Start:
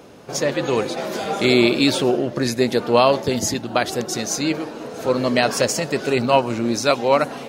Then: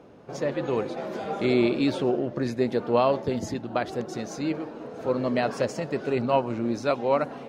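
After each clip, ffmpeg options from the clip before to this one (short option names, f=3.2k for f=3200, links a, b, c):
-af "lowpass=f=1.3k:p=1,volume=-5.5dB"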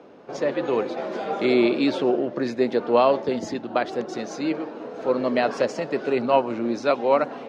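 -filter_complex "[0:a]acrossover=split=200 6700:gain=0.158 1 0.141[a][b][c];[a][b][c]amix=inputs=3:normalize=0,volume=4dB"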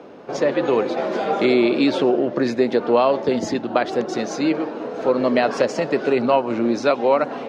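-af "acompressor=threshold=-21dB:ratio=2.5,volume=6.5dB"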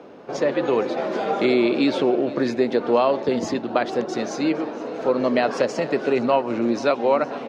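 -af "aecho=1:1:464|928|1392|1856:0.112|0.0606|0.0327|0.0177,volume=-2dB"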